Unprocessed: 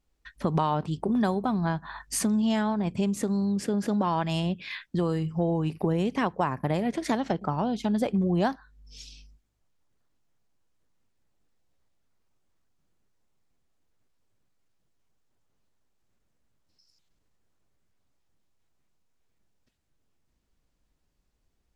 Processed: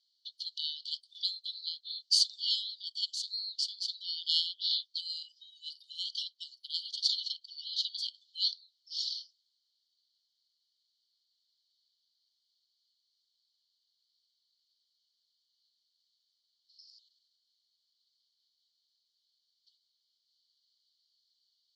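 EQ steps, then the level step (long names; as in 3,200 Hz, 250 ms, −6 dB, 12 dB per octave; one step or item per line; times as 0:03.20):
linear-phase brick-wall high-pass 2,900 Hz
low-pass with resonance 4,400 Hz, resonance Q 9.4
+1.5 dB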